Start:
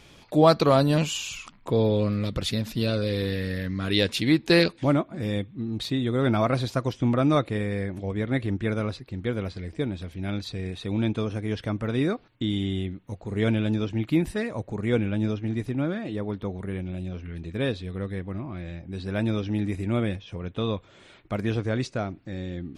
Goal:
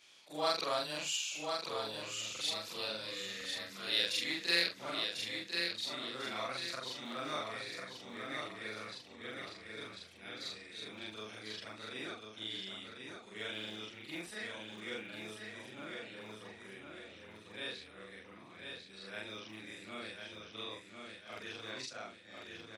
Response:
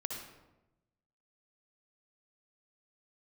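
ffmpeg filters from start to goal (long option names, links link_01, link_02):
-filter_complex "[0:a]afftfilt=real='re':imag='-im':win_size=4096:overlap=0.75,highshelf=frequency=5000:gain=-5,aecho=1:1:1046|2092|3138|4184|5230:0.562|0.214|0.0812|0.0309|0.0117,acrossover=split=240[link_01][link_02];[link_01]asoftclip=type=hard:threshold=-31dB[link_03];[link_02]adynamicsmooth=sensitivity=1:basefreq=7600[link_04];[link_03][link_04]amix=inputs=2:normalize=0,aderivative,volume=8.5dB"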